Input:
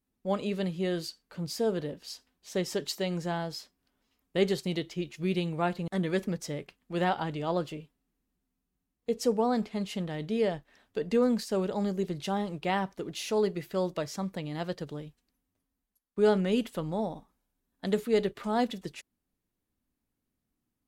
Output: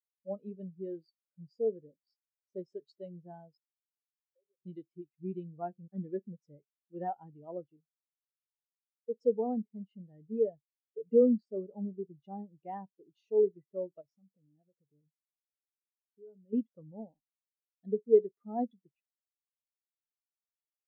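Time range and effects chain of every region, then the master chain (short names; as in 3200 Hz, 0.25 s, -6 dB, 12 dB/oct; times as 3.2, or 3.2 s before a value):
3.57–4.6 vocal tract filter e + compressor, threshold -43 dBFS
14.01–16.53 bell 980 Hz -11.5 dB 0.26 oct + compressor 3:1, threshold -39 dBFS
whole clip: bell 180 Hz -2.5 dB 0.24 oct; spectral expander 2.5:1; gain +3 dB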